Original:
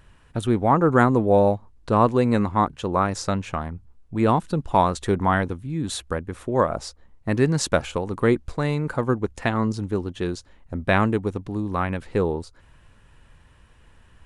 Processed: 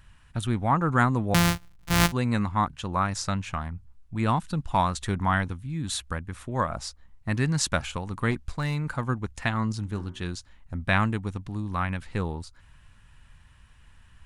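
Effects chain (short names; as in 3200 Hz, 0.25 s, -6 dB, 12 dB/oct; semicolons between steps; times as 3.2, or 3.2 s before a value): 1.34–2.12 sample sorter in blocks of 256 samples; bell 430 Hz -13.5 dB 1.5 oct; 8.31–8.98 overloaded stage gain 21 dB; 9.83–10.24 de-hum 62.55 Hz, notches 36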